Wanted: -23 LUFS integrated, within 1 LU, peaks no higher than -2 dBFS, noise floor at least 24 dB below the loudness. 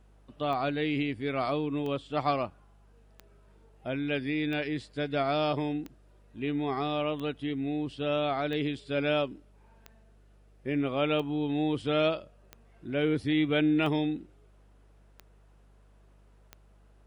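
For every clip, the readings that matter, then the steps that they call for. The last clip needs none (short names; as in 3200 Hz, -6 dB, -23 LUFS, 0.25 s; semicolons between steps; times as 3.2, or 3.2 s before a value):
clicks 13; hum 50 Hz; harmonics up to 200 Hz; hum level -56 dBFS; loudness -30.5 LUFS; peak -14.5 dBFS; loudness target -23.0 LUFS
-> de-click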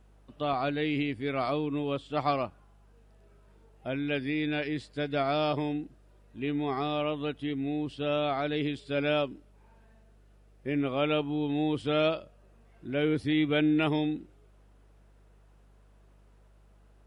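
clicks 0; hum 50 Hz; harmonics up to 200 Hz; hum level -56 dBFS
-> de-hum 50 Hz, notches 4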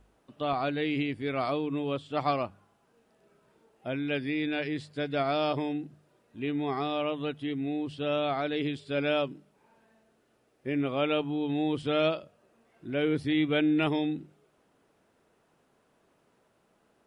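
hum none; loudness -30.5 LUFS; peak -14.5 dBFS; loudness target -23.0 LUFS
-> gain +7.5 dB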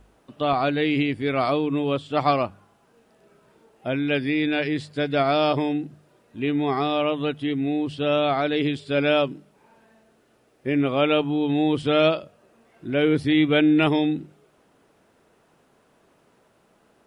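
loudness -23.0 LUFS; peak -7.0 dBFS; noise floor -62 dBFS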